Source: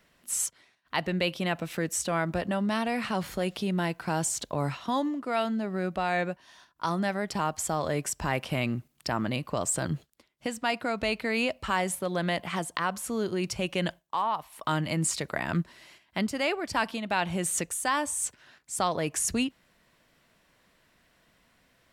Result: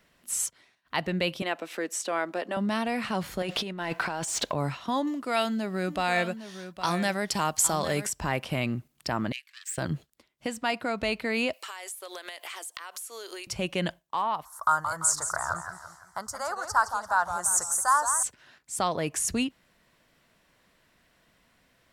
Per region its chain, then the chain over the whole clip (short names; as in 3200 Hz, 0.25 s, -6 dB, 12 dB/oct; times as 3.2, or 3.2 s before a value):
1.42–2.57 HPF 290 Hz 24 dB/oct + high shelf 11000 Hz -8.5 dB
3.42–4.53 negative-ratio compressor -33 dBFS, ratio -0.5 + overdrive pedal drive 17 dB, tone 3000 Hz, clips at -14.5 dBFS
5.07–8.07 high shelf 2700 Hz +10.5 dB + echo 0.81 s -11.5 dB
9.32–9.78 half-wave gain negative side -12 dB + Chebyshev high-pass 1700 Hz, order 5 + high shelf 9700 Hz -6.5 dB
11.53–13.47 inverse Chebyshev high-pass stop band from 170 Hz + tilt +4 dB/oct + compressor 16:1, threshold -35 dBFS
14.45–18.23 EQ curve 100 Hz 0 dB, 170 Hz -19 dB, 270 Hz -23 dB, 920 Hz +5 dB, 1400 Hz +10 dB, 2500 Hz -29 dB, 6100 Hz +7 dB, 13000 Hz +3 dB + warbling echo 0.17 s, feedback 43%, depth 160 cents, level -8.5 dB
whole clip: dry